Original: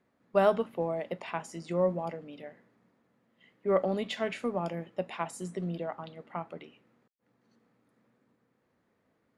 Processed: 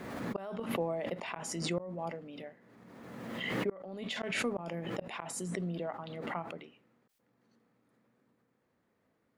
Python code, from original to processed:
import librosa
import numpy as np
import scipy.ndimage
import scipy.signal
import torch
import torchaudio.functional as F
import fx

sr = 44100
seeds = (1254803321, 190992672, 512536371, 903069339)

y = fx.gate_flip(x, sr, shuts_db=-20.0, range_db=-31)
y = fx.pre_swell(y, sr, db_per_s=31.0)
y = y * 10.0 ** (-2.5 / 20.0)